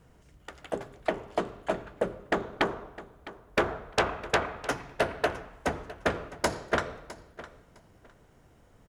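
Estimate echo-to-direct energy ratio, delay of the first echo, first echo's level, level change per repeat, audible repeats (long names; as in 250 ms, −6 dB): −17.0 dB, 658 ms, −17.0 dB, −14.5 dB, 2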